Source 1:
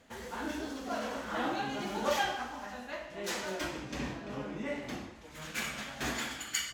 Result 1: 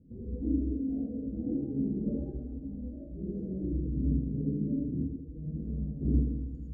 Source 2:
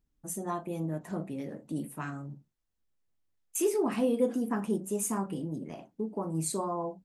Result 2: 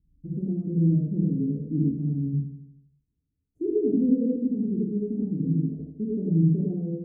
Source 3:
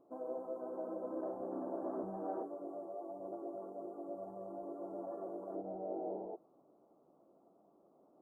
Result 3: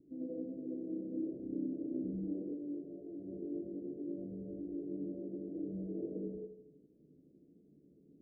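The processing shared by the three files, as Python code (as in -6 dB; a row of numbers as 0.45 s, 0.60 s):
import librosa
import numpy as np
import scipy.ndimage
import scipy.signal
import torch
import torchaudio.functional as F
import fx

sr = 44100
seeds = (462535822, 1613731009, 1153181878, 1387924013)

p1 = scipy.signal.sosfilt(scipy.signal.butter(2, 43.0, 'highpass', fs=sr, output='sos'), x)
p2 = fx.dereverb_blind(p1, sr, rt60_s=0.51)
p3 = scipy.signal.sosfilt(scipy.signal.cheby2(4, 50, 920.0, 'lowpass', fs=sr, output='sos'), p2)
p4 = fx.tilt_eq(p3, sr, slope=-3.0)
p5 = fx.rider(p4, sr, range_db=4, speed_s=2.0)
p6 = p5 + fx.echo_feedback(p5, sr, ms=79, feedback_pct=57, wet_db=-9.5, dry=0)
p7 = fx.rev_gated(p6, sr, seeds[0], gate_ms=130, shape='rising', drr_db=-4.5)
y = p7 * 10.0 ** (-2.5 / 20.0)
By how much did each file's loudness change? +3.0 LU, +7.0 LU, +2.0 LU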